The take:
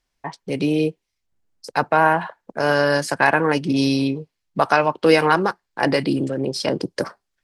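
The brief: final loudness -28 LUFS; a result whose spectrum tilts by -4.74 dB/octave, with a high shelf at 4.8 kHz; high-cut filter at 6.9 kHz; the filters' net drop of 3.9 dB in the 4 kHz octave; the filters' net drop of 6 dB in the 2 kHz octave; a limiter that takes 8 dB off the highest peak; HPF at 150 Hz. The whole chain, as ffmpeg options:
-af "highpass=150,lowpass=6900,equalizer=f=2000:t=o:g=-8.5,equalizer=f=4000:t=o:g=-5,highshelf=f=4800:g=5.5,volume=0.631,alimiter=limit=0.158:level=0:latency=1"

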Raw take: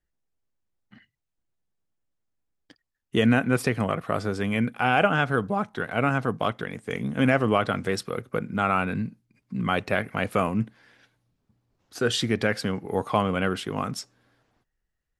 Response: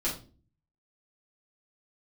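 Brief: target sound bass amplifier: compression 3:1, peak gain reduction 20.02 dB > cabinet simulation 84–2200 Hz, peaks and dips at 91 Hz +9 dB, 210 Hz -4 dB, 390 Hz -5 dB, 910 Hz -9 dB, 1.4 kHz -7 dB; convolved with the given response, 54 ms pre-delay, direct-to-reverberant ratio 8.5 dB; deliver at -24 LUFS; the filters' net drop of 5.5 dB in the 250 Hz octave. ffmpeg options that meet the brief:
-filter_complex "[0:a]equalizer=f=250:t=o:g=-4,asplit=2[s0][s1];[1:a]atrim=start_sample=2205,adelay=54[s2];[s1][s2]afir=irnorm=-1:irlink=0,volume=0.178[s3];[s0][s3]amix=inputs=2:normalize=0,acompressor=threshold=0.00708:ratio=3,highpass=f=84:w=0.5412,highpass=f=84:w=1.3066,equalizer=f=91:t=q:w=4:g=9,equalizer=f=210:t=q:w=4:g=-4,equalizer=f=390:t=q:w=4:g=-5,equalizer=f=910:t=q:w=4:g=-9,equalizer=f=1400:t=q:w=4:g=-7,lowpass=f=2200:w=0.5412,lowpass=f=2200:w=1.3066,volume=10.6"

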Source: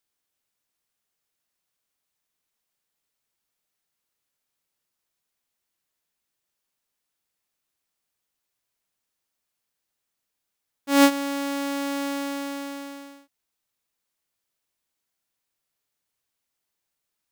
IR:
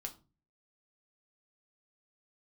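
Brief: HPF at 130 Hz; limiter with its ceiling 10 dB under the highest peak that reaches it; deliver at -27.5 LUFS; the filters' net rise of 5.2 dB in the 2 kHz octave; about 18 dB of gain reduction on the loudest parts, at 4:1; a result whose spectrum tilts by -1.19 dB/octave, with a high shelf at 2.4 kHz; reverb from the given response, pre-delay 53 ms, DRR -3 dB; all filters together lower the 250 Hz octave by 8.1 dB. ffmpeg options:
-filter_complex "[0:a]highpass=130,equalizer=f=250:t=o:g=-9,equalizer=f=2000:t=o:g=4.5,highshelf=f=2400:g=4,acompressor=threshold=0.0251:ratio=4,alimiter=level_in=1.5:limit=0.0631:level=0:latency=1,volume=0.668,asplit=2[s0][s1];[1:a]atrim=start_sample=2205,adelay=53[s2];[s1][s2]afir=irnorm=-1:irlink=0,volume=1.88[s3];[s0][s3]amix=inputs=2:normalize=0,volume=2.99"

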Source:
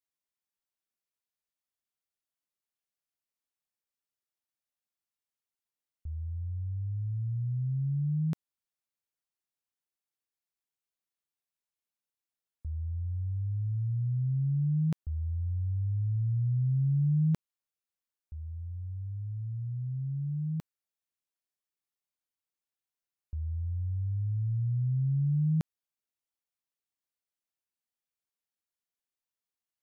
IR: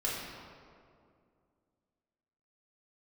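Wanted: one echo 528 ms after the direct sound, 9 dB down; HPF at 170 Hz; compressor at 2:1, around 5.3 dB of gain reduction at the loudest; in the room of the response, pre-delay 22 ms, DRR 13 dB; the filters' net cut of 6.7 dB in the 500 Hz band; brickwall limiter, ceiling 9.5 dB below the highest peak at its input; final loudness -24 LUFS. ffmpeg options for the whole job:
-filter_complex "[0:a]highpass=170,equalizer=f=500:t=o:g=-9,acompressor=threshold=0.0112:ratio=2,alimiter=level_in=5.31:limit=0.0631:level=0:latency=1,volume=0.188,aecho=1:1:528:0.355,asplit=2[s0][s1];[1:a]atrim=start_sample=2205,adelay=22[s2];[s1][s2]afir=irnorm=-1:irlink=0,volume=0.106[s3];[s0][s3]amix=inputs=2:normalize=0,volume=10.6"

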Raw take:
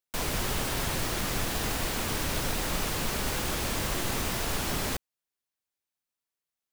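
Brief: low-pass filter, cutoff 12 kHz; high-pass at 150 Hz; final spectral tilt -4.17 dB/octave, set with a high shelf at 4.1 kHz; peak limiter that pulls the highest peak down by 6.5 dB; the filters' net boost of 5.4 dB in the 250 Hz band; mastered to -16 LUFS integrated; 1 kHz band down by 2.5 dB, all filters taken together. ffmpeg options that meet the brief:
-af "highpass=150,lowpass=12000,equalizer=f=250:t=o:g=8,equalizer=f=1000:t=o:g=-3.5,highshelf=f=4100:g=-3.5,volume=8.41,alimiter=limit=0.447:level=0:latency=1"

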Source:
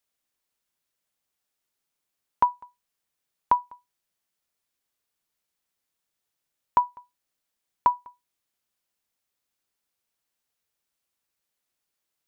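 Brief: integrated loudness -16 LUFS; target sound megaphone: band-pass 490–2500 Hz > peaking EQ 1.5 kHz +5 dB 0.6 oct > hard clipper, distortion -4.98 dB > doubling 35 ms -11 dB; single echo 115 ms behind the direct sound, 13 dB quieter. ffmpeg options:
-filter_complex "[0:a]highpass=490,lowpass=2500,equalizer=f=1500:t=o:w=0.6:g=5,aecho=1:1:115:0.224,asoftclip=type=hard:threshold=0.075,asplit=2[s0][s1];[s1]adelay=35,volume=0.282[s2];[s0][s2]amix=inputs=2:normalize=0,volume=6.68"

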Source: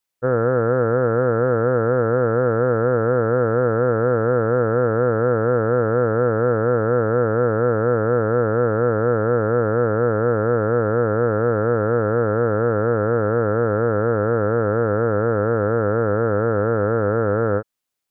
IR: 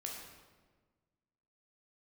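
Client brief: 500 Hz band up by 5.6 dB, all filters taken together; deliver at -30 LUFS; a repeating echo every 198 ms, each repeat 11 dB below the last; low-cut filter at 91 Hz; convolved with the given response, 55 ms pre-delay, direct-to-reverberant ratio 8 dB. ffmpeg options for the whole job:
-filter_complex "[0:a]highpass=91,equalizer=f=500:t=o:g=6,aecho=1:1:198|396|594:0.282|0.0789|0.0221,asplit=2[s0][s1];[1:a]atrim=start_sample=2205,adelay=55[s2];[s1][s2]afir=irnorm=-1:irlink=0,volume=0.447[s3];[s0][s3]amix=inputs=2:normalize=0,volume=0.158"

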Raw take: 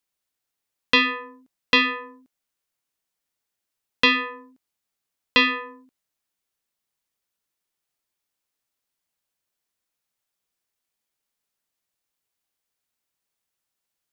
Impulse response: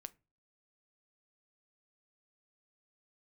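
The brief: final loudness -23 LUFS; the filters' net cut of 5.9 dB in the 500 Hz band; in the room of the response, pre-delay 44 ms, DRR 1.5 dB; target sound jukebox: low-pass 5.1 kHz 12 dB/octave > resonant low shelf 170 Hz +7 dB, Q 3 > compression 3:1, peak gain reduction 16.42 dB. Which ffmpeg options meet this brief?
-filter_complex "[0:a]equalizer=f=500:t=o:g=-5,asplit=2[s0][s1];[1:a]atrim=start_sample=2205,adelay=44[s2];[s1][s2]afir=irnorm=-1:irlink=0,volume=1.58[s3];[s0][s3]amix=inputs=2:normalize=0,lowpass=5100,lowshelf=f=170:t=q:w=3:g=7,acompressor=threshold=0.0158:ratio=3,volume=3.76"

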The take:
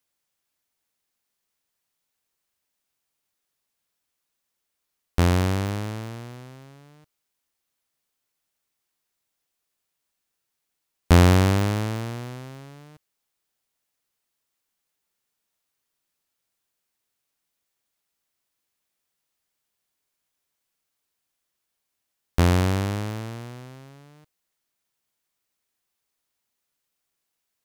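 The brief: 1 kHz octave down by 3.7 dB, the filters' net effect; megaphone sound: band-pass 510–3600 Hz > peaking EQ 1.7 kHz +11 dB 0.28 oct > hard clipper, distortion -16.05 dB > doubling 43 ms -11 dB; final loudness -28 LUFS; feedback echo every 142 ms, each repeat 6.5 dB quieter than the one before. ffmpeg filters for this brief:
-filter_complex "[0:a]highpass=510,lowpass=3600,equalizer=f=1000:t=o:g=-5,equalizer=f=1700:t=o:w=0.28:g=11,aecho=1:1:142|284|426|568|710|852:0.473|0.222|0.105|0.0491|0.0231|0.0109,asoftclip=type=hard:threshold=0.299,asplit=2[s0][s1];[s1]adelay=43,volume=0.282[s2];[s0][s2]amix=inputs=2:normalize=0,volume=1.19"

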